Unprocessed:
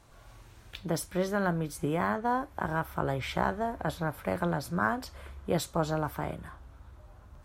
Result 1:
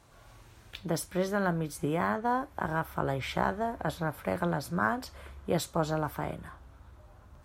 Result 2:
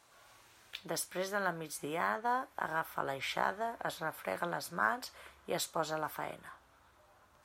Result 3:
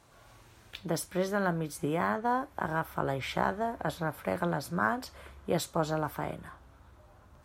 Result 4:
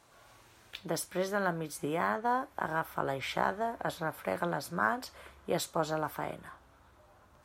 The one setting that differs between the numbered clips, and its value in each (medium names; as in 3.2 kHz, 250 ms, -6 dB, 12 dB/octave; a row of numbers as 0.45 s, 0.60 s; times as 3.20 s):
high-pass, cutoff frequency: 53 Hz, 960 Hz, 130 Hz, 370 Hz